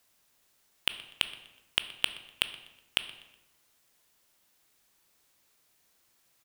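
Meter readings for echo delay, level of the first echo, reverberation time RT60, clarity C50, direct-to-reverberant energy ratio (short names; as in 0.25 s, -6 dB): 0.123 s, -20.0 dB, 1.0 s, 12.5 dB, 10.0 dB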